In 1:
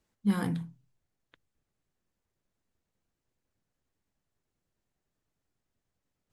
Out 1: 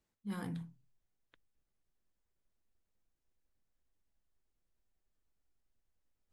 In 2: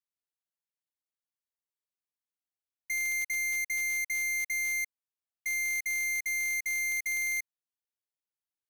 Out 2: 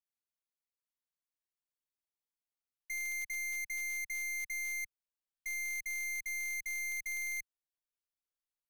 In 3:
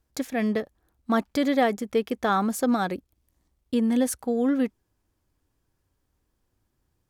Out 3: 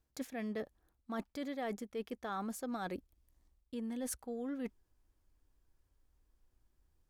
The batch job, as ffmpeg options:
-af "areverse,acompressor=threshold=0.0282:ratio=6,areverse,asubboost=boost=5:cutoff=53,volume=0.501"

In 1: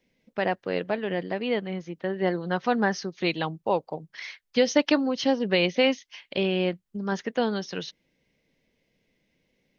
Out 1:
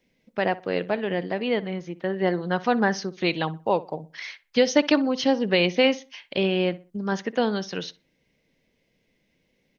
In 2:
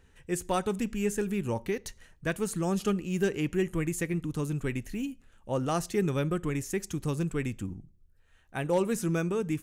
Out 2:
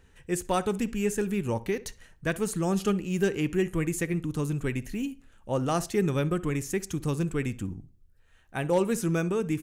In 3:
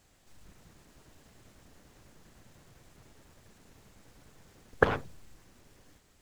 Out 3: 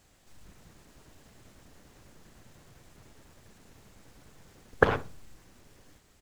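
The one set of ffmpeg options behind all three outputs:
-filter_complex "[0:a]asplit=2[s0][s1];[s1]adelay=62,lowpass=f=2400:p=1,volume=0.133,asplit=2[s2][s3];[s3]adelay=62,lowpass=f=2400:p=1,volume=0.31,asplit=2[s4][s5];[s5]adelay=62,lowpass=f=2400:p=1,volume=0.31[s6];[s0][s2][s4][s6]amix=inputs=4:normalize=0,volume=1.26"

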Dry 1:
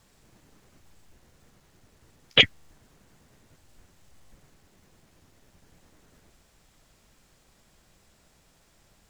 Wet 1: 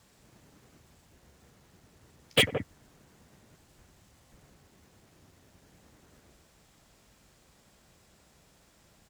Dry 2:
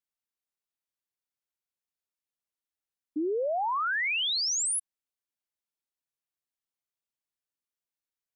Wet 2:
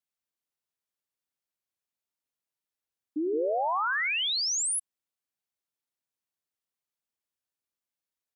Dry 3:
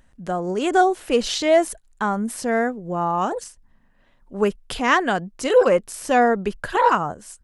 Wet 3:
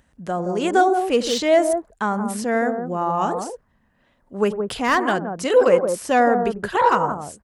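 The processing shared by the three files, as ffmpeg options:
-filter_complex "[0:a]highpass=48,acrossover=split=1300[s0][s1];[s0]aecho=1:1:96|171:0.224|0.531[s2];[s1]asoftclip=type=hard:threshold=0.1[s3];[s2][s3]amix=inputs=2:normalize=0"

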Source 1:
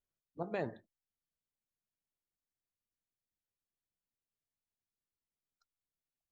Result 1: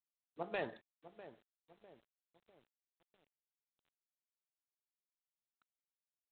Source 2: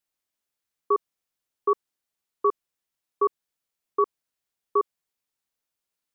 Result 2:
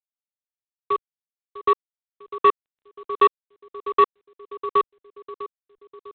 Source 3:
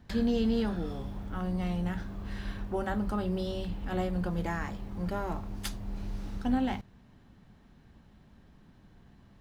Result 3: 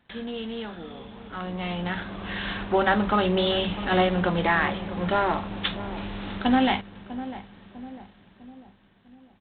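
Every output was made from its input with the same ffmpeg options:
-filter_complex "[0:a]dynaudnorm=f=280:g=13:m=6.31,aemphasis=mode=production:type=riaa,apsyclip=0.891,asplit=2[s0][s1];[s1]adelay=650,lowpass=f=860:p=1,volume=0.224,asplit=2[s2][s3];[s3]adelay=650,lowpass=f=860:p=1,volume=0.53,asplit=2[s4][s5];[s5]adelay=650,lowpass=f=860:p=1,volume=0.53,asplit=2[s6][s7];[s7]adelay=650,lowpass=f=860:p=1,volume=0.53,asplit=2[s8][s9];[s9]adelay=650,lowpass=f=860:p=1,volume=0.53[s10];[s2][s4][s6][s8][s10]amix=inputs=5:normalize=0[s11];[s0][s11]amix=inputs=2:normalize=0,acontrast=49,volume=0.531" -ar 8000 -c:a adpcm_g726 -b:a 24k

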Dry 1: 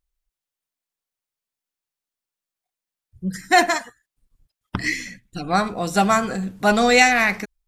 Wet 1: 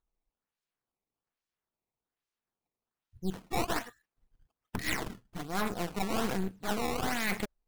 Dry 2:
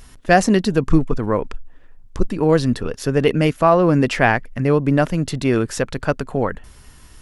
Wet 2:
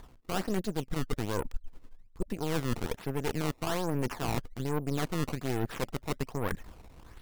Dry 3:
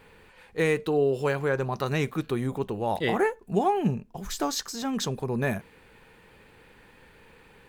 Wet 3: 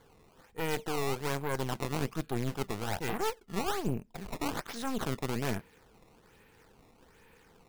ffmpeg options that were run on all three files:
-af "acrusher=samples=16:mix=1:aa=0.000001:lfo=1:lforange=25.6:lforate=1.2,areverse,acompressor=threshold=0.0562:ratio=12,areverse,aeval=exprs='0.178*(cos(1*acos(clip(val(0)/0.178,-1,1)))-cos(1*PI/2))+0.0447*(cos(4*acos(clip(val(0)/0.178,-1,1)))-cos(4*PI/2))+0.00126*(cos(7*acos(clip(val(0)/0.178,-1,1)))-cos(7*PI/2))+0.0126*(cos(8*acos(clip(val(0)/0.178,-1,1)))-cos(8*PI/2))':c=same,bandreject=f=580:w=12,volume=0.531"

